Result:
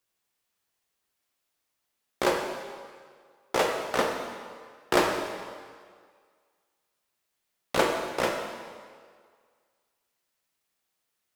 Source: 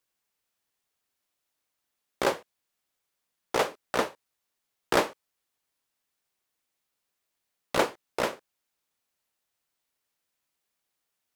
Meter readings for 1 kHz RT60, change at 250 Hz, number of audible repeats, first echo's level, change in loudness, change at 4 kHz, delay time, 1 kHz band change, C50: 1.9 s, +3.0 dB, no echo, no echo, +1.0 dB, +2.0 dB, no echo, +2.0 dB, 3.5 dB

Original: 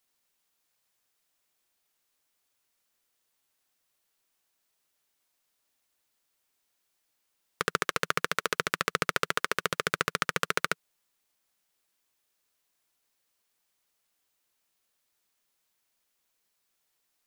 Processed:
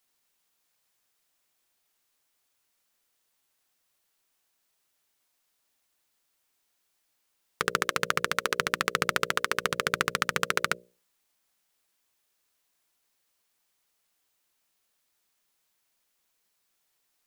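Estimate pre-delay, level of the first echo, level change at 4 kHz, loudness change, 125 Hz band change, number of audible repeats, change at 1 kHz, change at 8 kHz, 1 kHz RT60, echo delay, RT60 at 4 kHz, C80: no reverb, no echo, +2.0 dB, +2.0 dB, +1.5 dB, no echo, +2.0 dB, +2.0 dB, no reverb, no echo, no reverb, no reverb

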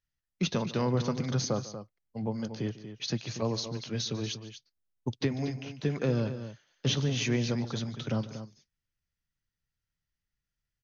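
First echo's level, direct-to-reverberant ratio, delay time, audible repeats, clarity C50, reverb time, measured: -17.5 dB, no reverb, 147 ms, 2, no reverb, no reverb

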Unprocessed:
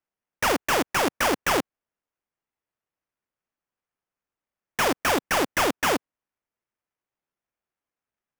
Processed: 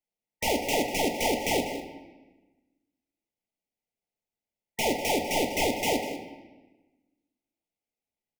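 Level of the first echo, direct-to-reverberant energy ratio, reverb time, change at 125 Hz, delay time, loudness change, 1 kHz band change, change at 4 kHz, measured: -14.0 dB, 2.5 dB, 1.2 s, -1.5 dB, 196 ms, -3.5 dB, -5.0 dB, -2.0 dB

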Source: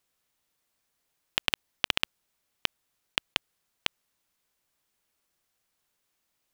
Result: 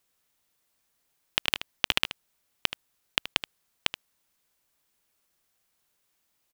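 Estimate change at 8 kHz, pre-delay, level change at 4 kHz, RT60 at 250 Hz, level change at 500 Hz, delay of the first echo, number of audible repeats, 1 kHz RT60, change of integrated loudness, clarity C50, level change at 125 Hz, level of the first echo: +3.0 dB, no reverb, +2.0 dB, no reverb, +2.0 dB, 77 ms, 1, no reverb, +2.0 dB, no reverb, +1.5 dB, -12.5 dB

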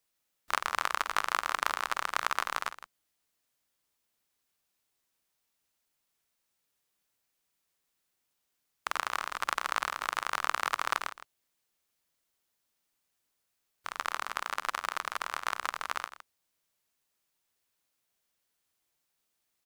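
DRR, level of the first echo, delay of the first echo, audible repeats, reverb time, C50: no reverb, -19.5 dB, 50 ms, 2, no reverb, no reverb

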